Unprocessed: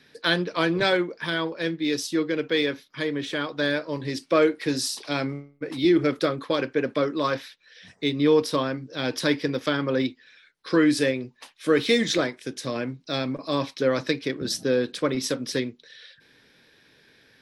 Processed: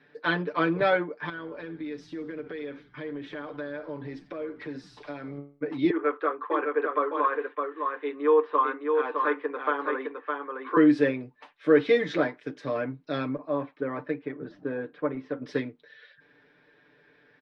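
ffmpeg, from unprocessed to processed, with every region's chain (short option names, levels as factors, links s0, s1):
-filter_complex "[0:a]asettb=1/sr,asplit=3[s0][s1][s2];[s0]atrim=end=1.294[s3];[s1]atrim=start=1.29:end=5.38,asetpts=PTS-STARTPTS,afade=t=in:d=0.004:c=qsin,afade=t=out:st=4.086:d=0.004:c=qsin,acompressor=threshold=0.0251:ratio=10:attack=3.2:release=140:knee=1:detection=peak,aeval=exprs='val(0)+0.00141*(sin(2*PI*60*n/s)+sin(2*PI*2*60*n/s)/2+sin(2*PI*3*60*n/s)/3+sin(2*PI*4*60*n/s)/4+sin(2*PI*5*60*n/s)/5)':c=same,asplit=6[s4][s5][s6][s7][s8][s9];[s5]adelay=85,afreqshift=-70,volume=0.158[s10];[s6]adelay=170,afreqshift=-140,volume=0.0841[s11];[s7]adelay=255,afreqshift=-210,volume=0.0447[s12];[s8]adelay=340,afreqshift=-280,volume=0.0237[s13];[s9]adelay=425,afreqshift=-350,volume=0.0124[s14];[s4][s10][s11][s12][s13][s14]amix=inputs=6:normalize=0,atrim=end_sample=180369[s15];[s2]atrim=start=5.376[s16];[s3][s15]acrossfade=d=0.004:c1=hsin:c2=qsin[s17];[s17][s16]acrossfade=d=0.004:c1=qsin:c2=hsin,asettb=1/sr,asplit=3[s18][s19][s20];[s18]atrim=end=5.904[s21];[s19]atrim=start=5.9:end=10.77,asetpts=PTS-STARTPTS,afade=t=in:d=0.004:c=qsin,afade=t=out:st=4.866:d=0.004:c=qsin,highpass=f=400:w=0.5412,highpass=f=400:w=1.3066,equalizer=f=600:t=q:w=4:g=-9,equalizer=f=1100:t=q:w=4:g=9,equalizer=f=2200:t=q:w=4:g=-5,lowpass=f=2700:w=0.5412,lowpass=f=2700:w=1.3066,aecho=1:1:611:0.596,atrim=end_sample=214767[s22];[s20]atrim=start=10.766[s23];[s21][s22]acrossfade=d=0.004:c1=hsin:c2=qsin[s24];[s24][s23]acrossfade=d=0.004:c1=qsin:c2=hsin,asettb=1/sr,asplit=3[s25][s26][s27];[s25]atrim=end=13.384[s28];[s26]atrim=start=13.38:end=15.42,asetpts=PTS-STARTPTS,afade=t=in:d=0.004:c=qsin,afade=t=out:st=2.036:d=0.004:c=qsin,lowpass=2000,flanger=delay=1.1:depth=2.2:regen=78:speed=1.2:shape=sinusoidal[s29];[s27]atrim=start=15.416[s30];[s28][s29]acrossfade=d=0.004:c1=hsin:c2=qsin[s31];[s31][s30]acrossfade=d=0.004:c1=qsin:c2=hsin,lowpass=1600,lowshelf=f=190:g=-11.5,aecho=1:1:6.8:0.72"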